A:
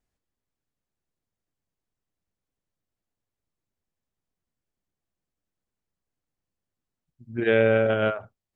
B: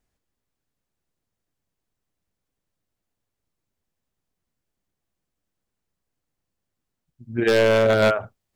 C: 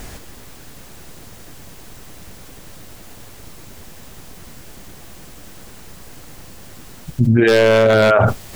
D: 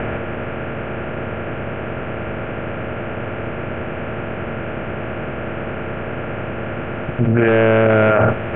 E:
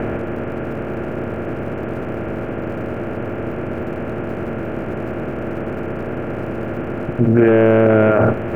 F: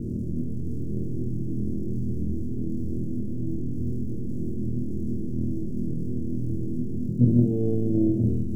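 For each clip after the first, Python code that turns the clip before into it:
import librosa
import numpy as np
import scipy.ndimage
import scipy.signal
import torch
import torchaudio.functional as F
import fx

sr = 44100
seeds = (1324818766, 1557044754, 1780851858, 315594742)

y1 = fx.rider(x, sr, range_db=3, speed_s=0.5)
y1 = 10.0 ** (-16.5 / 20.0) * (np.abs((y1 / 10.0 ** (-16.5 / 20.0) + 3.0) % 4.0 - 2.0) - 1.0)
y1 = F.gain(torch.from_numpy(y1), 6.0).numpy()
y2 = fx.env_flatten(y1, sr, amount_pct=100)
y2 = F.gain(torch.from_numpy(y2), 3.5).numpy()
y3 = fx.bin_compress(y2, sr, power=0.4)
y3 = scipy.signal.sosfilt(scipy.signal.butter(12, 2900.0, 'lowpass', fs=sr, output='sos'), y3)
y3 = F.gain(torch.from_numpy(y3), -4.5).numpy()
y4 = fx.peak_eq(y3, sr, hz=310.0, db=6.5, octaves=1.1)
y4 = fx.dmg_crackle(y4, sr, seeds[0], per_s=190.0, level_db=-31.0)
y4 = fx.high_shelf(y4, sr, hz=2300.0, db=-9.5)
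y4 = F.gain(torch.from_numpy(y4), -1.0).numpy()
y5 = scipy.signal.sosfilt(scipy.signal.cheby2(4, 70, [830.0, 2100.0], 'bandstop', fs=sr, output='sos'), y4)
y5 = fx.room_flutter(y5, sr, wall_m=4.2, rt60_s=0.65)
y5 = fx.doppler_dist(y5, sr, depth_ms=0.34)
y5 = F.gain(torch.from_numpy(y5), -5.0).numpy()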